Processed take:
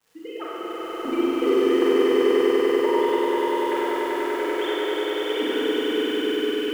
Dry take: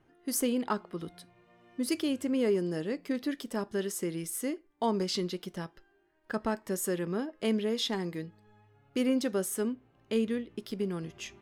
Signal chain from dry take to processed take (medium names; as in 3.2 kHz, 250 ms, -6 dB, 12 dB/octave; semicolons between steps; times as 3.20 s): formants replaced by sine waves; peaking EQ 1.1 kHz +5 dB 0.88 oct; in parallel at -4 dB: wavefolder -20.5 dBFS; on the sum: granular stretch 0.59×, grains 57 ms; crackle 450 per s -42 dBFS; tremolo saw up 0.53 Hz, depth 75%; dynamic bell 550 Hz, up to -5 dB, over -38 dBFS, Q 1.1; echo with a slow build-up 97 ms, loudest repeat 5, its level -7 dB; Schroeder reverb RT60 2.4 s, combs from 33 ms, DRR -7 dB